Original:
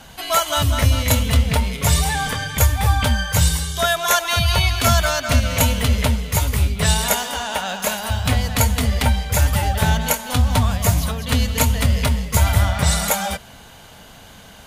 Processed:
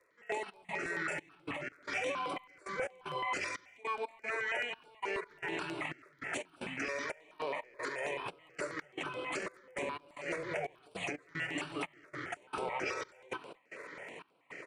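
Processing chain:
high-pass filter 340 Hz 24 dB per octave
high shelf with overshoot 5,100 Hz −10.5 dB, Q 1.5
downward compressor 6 to 1, threshold −28 dBFS, peak gain reduction 15 dB
brickwall limiter −23 dBFS, peak gain reduction 8.5 dB
gate pattern "...xx..xxxxx" 152 BPM −24 dB
surface crackle 15 per second −52 dBFS
pitch shifter −7.5 semitones
far-end echo of a speakerphone 220 ms, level −27 dB
step-sequenced phaser 9.3 Hz 820–6,600 Hz

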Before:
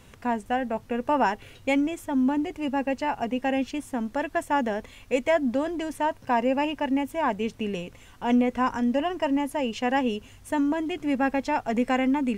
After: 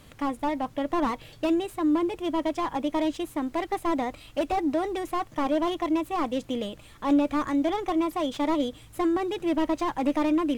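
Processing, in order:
speed change +17%
slew-rate limiting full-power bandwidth 54 Hz

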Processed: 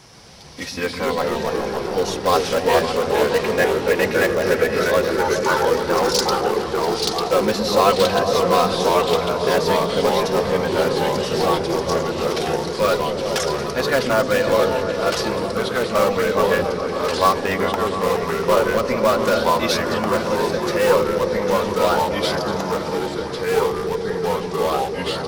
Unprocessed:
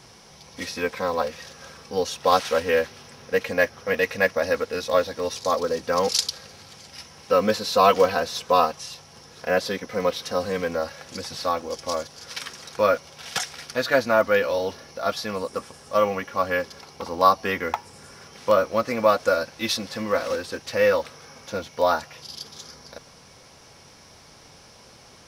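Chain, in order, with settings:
in parallel at −10 dB: wrap-around overflow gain 15 dB
0:05.17–0:05.65: on the sum: frequency shifter +370 Hz
echo whose low-pass opens from repeat to repeat 139 ms, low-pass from 200 Hz, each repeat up 1 octave, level 0 dB
delay with pitch and tempo change per echo 127 ms, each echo −2 semitones, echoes 3

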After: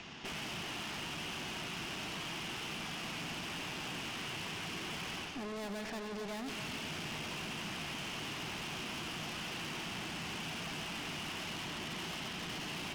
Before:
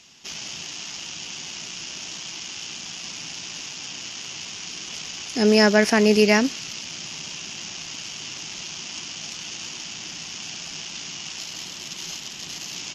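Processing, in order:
low-pass filter 2,000 Hz 12 dB per octave
notch filter 540 Hz, Q 14
reversed playback
downward compressor 6 to 1, threshold −30 dBFS, peak gain reduction 16 dB
reversed playback
tube saturation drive 48 dB, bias 0.55
echo with a time of its own for lows and highs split 1,300 Hz, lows 274 ms, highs 90 ms, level −9 dB
multiband upward and downward compressor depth 40%
level +8.5 dB

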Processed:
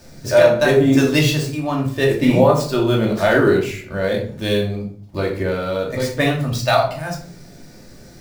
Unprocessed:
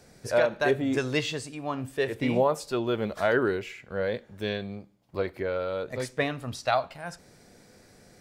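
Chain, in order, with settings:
running median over 5 samples
bass and treble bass +5 dB, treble +10 dB
rectangular room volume 530 cubic metres, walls furnished, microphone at 2.6 metres
level +5 dB

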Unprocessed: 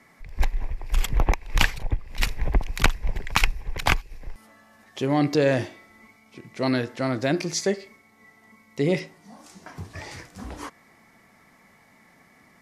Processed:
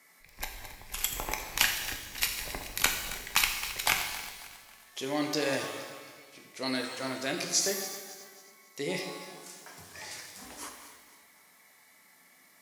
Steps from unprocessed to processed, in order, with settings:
feedback delay that plays each chunk backwards 136 ms, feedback 63%, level −12 dB
RIAA equalisation recording
reverb with rising layers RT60 1 s, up +12 semitones, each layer −8 dB, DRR 3.5 dB
level −8.5 dB

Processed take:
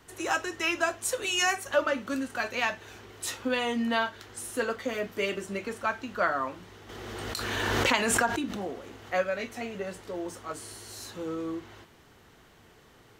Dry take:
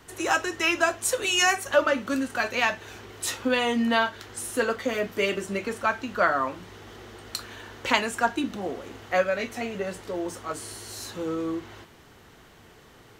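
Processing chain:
0:06.89–0:09.12: background raised ahead of every attack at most 21 dB per second
level −4.5 dB

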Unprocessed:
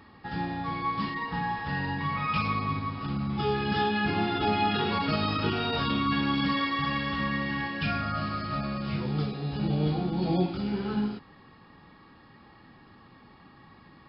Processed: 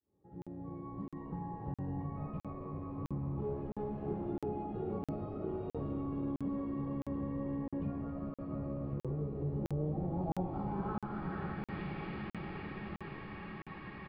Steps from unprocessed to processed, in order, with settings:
fade in at the beginning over 2.94 s
0:03.40–0:04.29: hard clipping −30.5 dBFS, distortion −14 dB
notch comb filter 240 Hz
feedback delay with all-pass diffusion 500 ms, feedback 66%, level −10.5 dB
downward compressor 4 to 1, threshold −38 dBFS, peak gain reduction 14 dB
hum removal 51.96 Hz, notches 40
on a send: echo with shifted repeats 275 ms, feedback 61%, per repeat −62 Hz, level −12 dB
on the sum: low-pass filter sweep 470 Hz → 2,300 Hz, 0:09.69–0:11.90
dynamic equaliser 370 Hz, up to −4 dB, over −48 dBFS, Q 1.4
regular buffer underruns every 0.66 s, samples 2,048, zero, from 0:00.42
level +3.5 dB

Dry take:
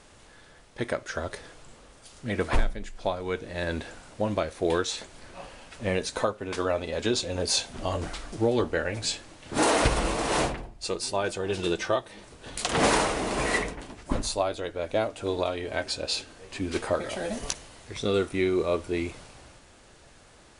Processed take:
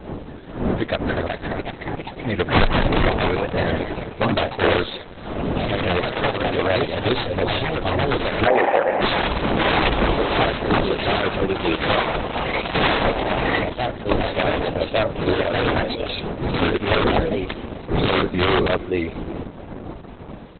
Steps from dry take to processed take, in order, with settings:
stylus tracing distortion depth 0.059 ms
wind on the microphone 420 Hz −36 dBFS
0:17.55–0:18.69: double-tracking delay 43 ms −5 dB
on a send: single-tap delay 330 ms −20.5 dB
on the sum: wrap-around overflow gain 16 dB
pitch vibrato 4.5 Hz 94 cents
delay with pitch and tempo change per echo 473 ms, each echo +2 semitones, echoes 3
0:08.47–0:09.01: loudspeaker in its box 330–2,400 Hz, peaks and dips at 550 Hz +8 dB, 790 Hz +10 dB, 1,300 Hz −6 dB, 1,900 Hz +4 dB
level +7.5 dB
Opus 8 kbit/s 48,000 Hz

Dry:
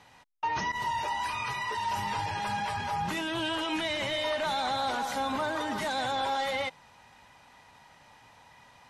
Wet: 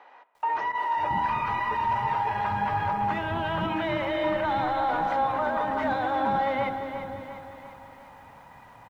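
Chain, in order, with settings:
low-pass filter 1,500 Hz 12 dB per octave
brickwall limiter −28 dBFS, peak gain reduction 5 dB
multiband delay without the direct sound highs, lows 540 ms, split 370 Hz
spring reverb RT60 2.1 s, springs 33/39 ms, chirp 55 ms, DRR 14.5 dB
feedback echo at a low word length 349 ms, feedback 55%, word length 11 bits, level −9 dB
level +8 dB

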